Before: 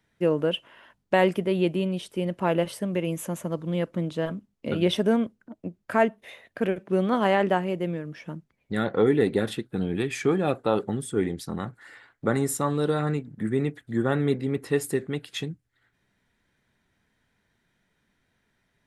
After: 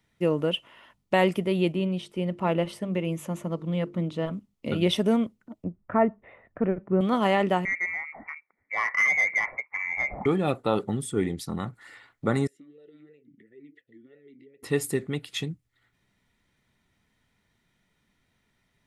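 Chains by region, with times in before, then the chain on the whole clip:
0:01.72–0:04.33: low-pass filter 3,300 Hz 6 dB per octave + mains-hum notches 50/100/150/200/250/300/350/400/450 Hz
0:05.64–0:07.01: low-pass filter 1,700 Hz 24 dB per octave + low-shelf EQ 94 Hz +10.5 dB
0:07.65–0:10.26: high-pass filter 390 Hz + voice inversion scrambler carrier 2,500 Hz + mid-hump overdrive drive 12 dB, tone 1,900 Hz, clips at −13.5 dBFS
0:12.47–0:14.63: downward compressor 12 to 1, threshold −36 dBFS + formant filter swept between two vowels e-i 2.9 Hz
whole clip: parametric band 490 Hz −3.5 dB 1.8 octaves; notch filter 1,600 Hz, Q 6.1; level +1.5 dB

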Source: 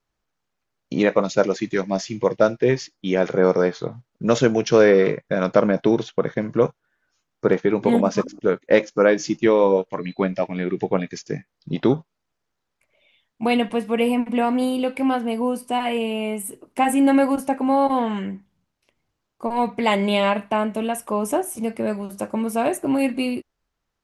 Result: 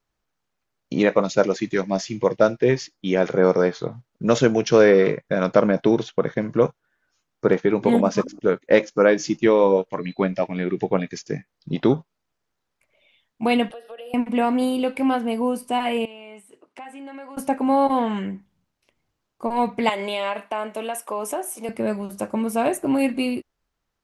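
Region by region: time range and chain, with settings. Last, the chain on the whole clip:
0:13.71–0:14.14: Butterworth high-pass 270 Hz 72 dB per octave + downward compressor 16 to 1, threshold −31 dBFS + phaser with its sweep stopped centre 1,500 Hz, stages 8
0:16.05–0:17.37: high-pass filter 870 Hz 6 dB per octave + downward compressor 4 to 1, threshold −37 dBFS + high-frequency loss of the air 99 metres
0:19.89–0:21.69: high-pass filter 420 Hz + downward compressor 3 to 1, threshold −22 dBFS
whole clip: no processing

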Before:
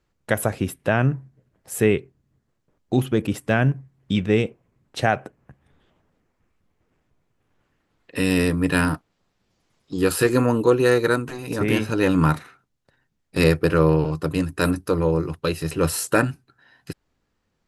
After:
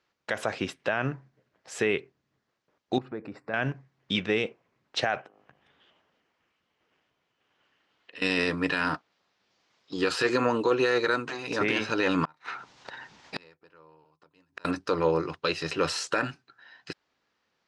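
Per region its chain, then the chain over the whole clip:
0:02.98–0:03.54: downward compressor 2 to 1, threshold −34 dBFS + moving average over 14 samples
0:05.21–0:08.22: parametric band 3,000 Hz +8 dB 0.23 octaves + hum removal 51.48 Hz, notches 26 + downward compressor 2.5 to 1, threshold −50 dBFS
0:12.25–0:14.65: parametric band 910 Hz +8 dB 0.35 octaves + upward compression, threshold −23 dBFS + gate with flip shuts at −18 dBFS, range −36 dB
whole clip: high-pass filter 880 Hz 6 dB per octave; brickwall limiter −18 dBFS; low-pass filter 5,800 Hz 24 dB per octave; level +4 dB

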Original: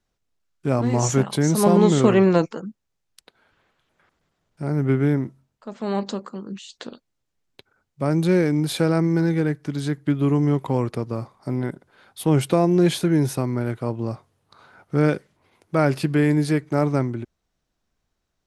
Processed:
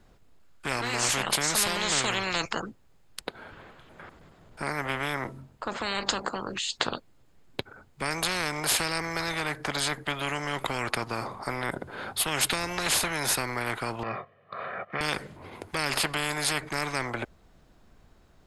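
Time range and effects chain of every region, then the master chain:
0:14.03–0:15.01: noise gate −56 dBFS, range −6 dB + loudspeaker in its box 270–2,800 Hz, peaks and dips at 450 Hz −5 dB, 910 Hz −5 dB, 2,000 Hz +6 dB + comb filter 1.7 ms, depth 85%
whole clip: high-shelf EQ 2,100 Hz −9 dB; notch filter 5,800 Hz, Q 9.6; every bin compressed towards the loudest bin 10 to 1

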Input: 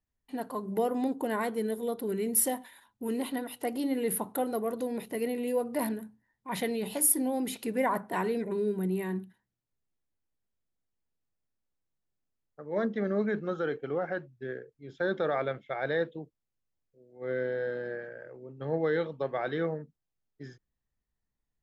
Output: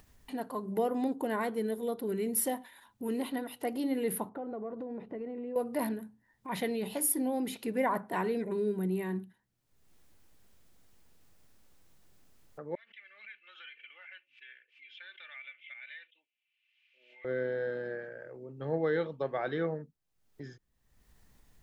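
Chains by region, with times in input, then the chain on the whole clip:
0:04.29–0:05.56: low-pass filter 1,300 Hz + downward compressor, threshold −34 dBFS
0:12.75–0:17.25: flat-topped band-pass 2,600 Hz, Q 3.3 + comb filter 3.4 ms, depth 55% + background raised ahead of every attack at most 150 dB per second
whole clip: dynamic equaliser 8,400 Hz, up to −5 dB, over −53 dBFS, Q 0.88; upward compression, threshold −39 dBFS; level −1.5 dB

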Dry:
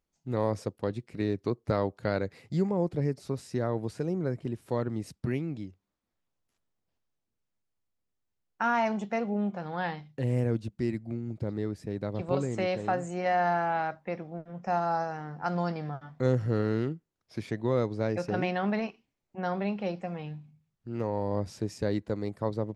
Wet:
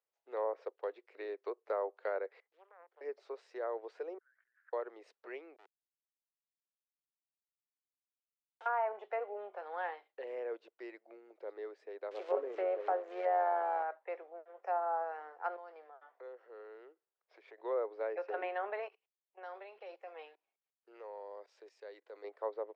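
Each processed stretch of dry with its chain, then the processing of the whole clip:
0:02.40–0:03.01: Savitzky-Golay smoothing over 41 samples + first difference + highs frequency-modulated by the lows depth 0.97 ms
0:04.18–0:04.73: compressor whose output falls as the input rises −42 dBFS + flat-topped band-pass 1,600 Hz, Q 4.7
0:05.56–0:08.66: mu-law and A-law mismatch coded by A + comparator with hysteresis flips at −35 dBFS
0:12.11–0:13.83: spike at every zero crossing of −23.5 dBFS + low-shelf EQ 440 Hz +10.5 dB + amplitude modulation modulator 97 Hz, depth 30%
0:15.56–0:17.58: high-shelf EQ 5,200 Hz −8.5 dB + downward compressor 2 to 1, threshold −46 dBFS
0:18.88–0:22.24: output level in coarse steps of 20 dB + high-shelf EQ 2,400 Hz +8.5 dB
whole clip: Butterworth high-pass 410 Hz 48 dB per octave; treble cut that deepens with the level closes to 1,400 Hz, closed at −25.5 dBFS; low-pass filter 2,500 Hz 12 dB per octave; level −5 dB

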